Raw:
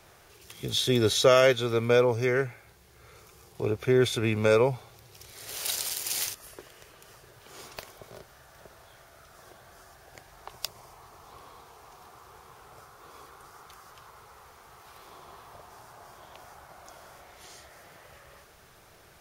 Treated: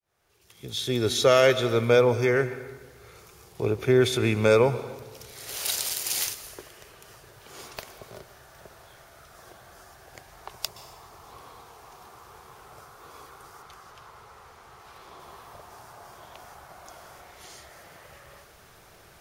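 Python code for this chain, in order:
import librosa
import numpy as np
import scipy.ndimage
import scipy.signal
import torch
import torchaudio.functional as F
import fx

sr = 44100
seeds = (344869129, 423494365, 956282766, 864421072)

y = fx.fade_in_head(x, sr, length_s=1.65)
y = fx.high_shelf(y, sr, hz=8600.0, db=-8.5, at=(13.62, 15.2))
y = fx.rev_plate(y, sr, seeds[0], rt60_s=1.4, hf_ratio=0.75, predelay_ms=110, drr_db=14.0)
y = F.gain(torch.from_numpy(y), 2.5).numpy()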